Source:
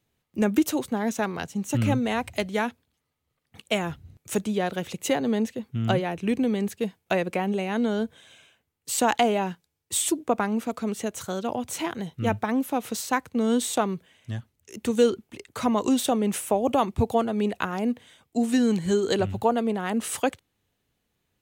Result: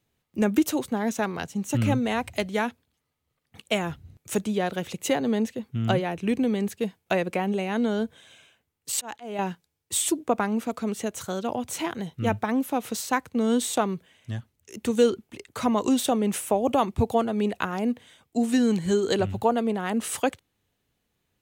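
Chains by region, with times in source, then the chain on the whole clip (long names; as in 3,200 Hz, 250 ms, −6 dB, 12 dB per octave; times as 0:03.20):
0:08.92–0:09.39: downward expander −33 dBFS + volume swells 394 ms
whole clip: no processing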